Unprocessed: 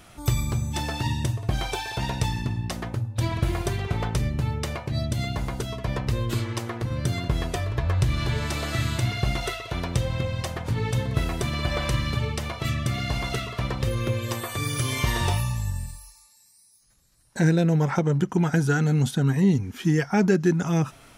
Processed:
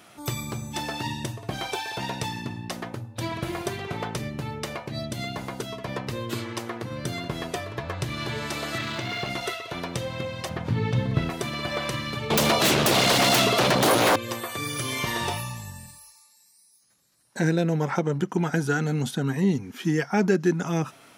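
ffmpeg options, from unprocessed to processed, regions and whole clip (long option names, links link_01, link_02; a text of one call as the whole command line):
ffmpeg -i in.wav -filter_complex "[0:a]asettb=1/sr,asplit=3[link_01][link_02][link_03];[link_01]atrim=end=8.784[link_04];[link_02]atrim=start=8.78:end=9.3,asetpts=PTS-STARTPTS,afade=type=in:duration=0.004:curve=qsin,afade=type=out:start_time=0.516:duration=0.004:curve=qsin,aeval=exprs='val(0)+0.5*0.0282*sgn(val(0))':channel_layout=same,acrossover=split=5700[link_05][link_06];[link_06]acompressor=threshold=-54dB:ratio=4:attack=1:release=60[link_07];[link_05][link_07]amix=inputs=2:normalize=0,lowshelf=frequency=150:gain=-8[link_08];[link_03]atrim=start=9.296[link_09];[link_04][link_08]acrossfade=duration=0.004:curve1=hsin:curve2=qsin[link_10];[link_10][link_09]acrossfade=duration=0.004:curve1=qsin:curve2=hsin,asettb=1/sr,asplit=3[link_11][link_12][link_13];[link_11]atrim=end=10.494[link_14];[link_12]atrim=start=10.49:end=11.3,asetpts=PTS-STARTPTS,afade=type=in:duration=0.004:curve=qsin,afade=type=out:start_time=0.806:duration=0.004:curve=qsin,acrossover=split=5200[link_15][link_16];[link_16]acompressor=threshold=-60dB:ratio=4:attack=1:release=60[link_17];[link_15][link_17]amix=inputs=2:normalize=0,bass=frequency=250:gain=10,treble=frequency=4000:gain=0[link_18];[link_13]atrim=start=11.296[link_19];[link_14][link_18]acrossfade=duration=0.004:curve1=hsin:curve2=qsin[link_20];[link_20][link_19]acrossfade=duration=0.004:curve1=qsin:curve2=hsin,asettb=1/sr,asplit=3[link_21][link_22][link_23];[link_21]atrim=end=12.304[link_24];[link_22]atrim=start=12.3:end=14.16,asetpts=PTS-STARTPTS,afade=type=in:duration=0.004:curve=qsin,afade=type=out:start_time=1.856:duration=0.004:curve=qsin,highpass=frequency=190:poles=1,equalizer=frequency=1700:width_type=o:width=1.4:gain=-12,aeval=exprs='0.178*sin(PI/2*7.94*val(0)/0.178)':channel_layout=same[link_25];[link_23]atrim=start=14.156[link_26];[link_24][link_25]acrossfade=duration=0.004:curve1=hsin:curve2=qsin[link_27];[link_27][link_26]acrossfade=duration=0.004:curve1=qsin:curve2=hsin,highpass=190,equalizer=frequency=7900:width=1.5:gain=-2" out.wav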